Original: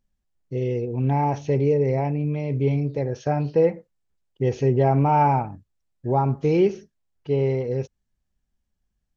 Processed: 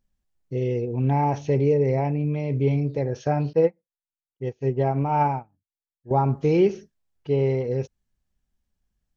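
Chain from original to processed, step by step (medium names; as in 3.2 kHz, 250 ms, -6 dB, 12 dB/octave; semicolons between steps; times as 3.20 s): 3.53–6.11 s: upward expansion 2.5:1, over -35 dBFS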